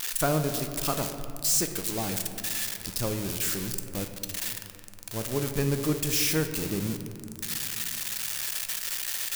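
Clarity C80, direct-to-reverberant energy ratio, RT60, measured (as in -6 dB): 9.0 dB, 6.5 dB, 2.4 s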